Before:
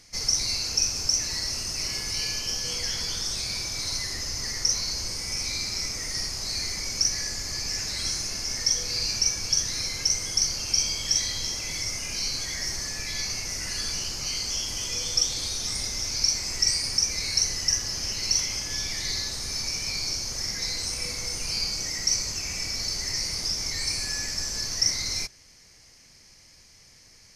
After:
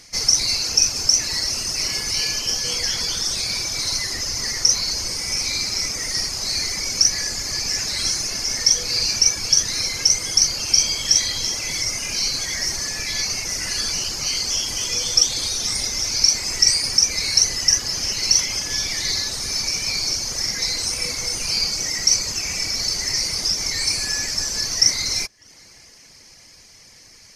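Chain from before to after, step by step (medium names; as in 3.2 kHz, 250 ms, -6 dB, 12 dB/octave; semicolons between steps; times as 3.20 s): tape echo 599 ms, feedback 81%, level -23 dB, low-pass 1.5 kHz; reverb removal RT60 0.51 s; bass shelf 140 Hz -6 dB; trim +8 dB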